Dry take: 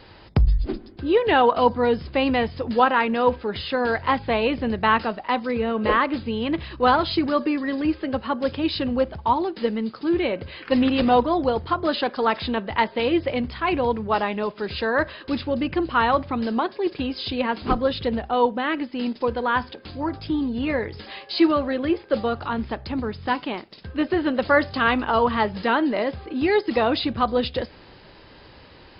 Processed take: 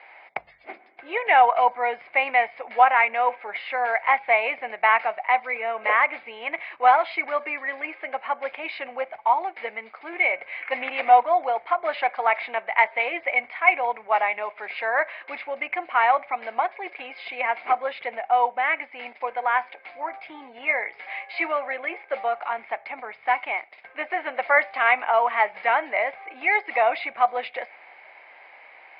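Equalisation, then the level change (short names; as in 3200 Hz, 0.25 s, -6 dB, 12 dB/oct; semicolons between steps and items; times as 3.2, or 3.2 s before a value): resonant high-pass 720 Hz, resonance Q 4.9; synth low-pass 2200 Hz, resonance Q 15; -8.5 dB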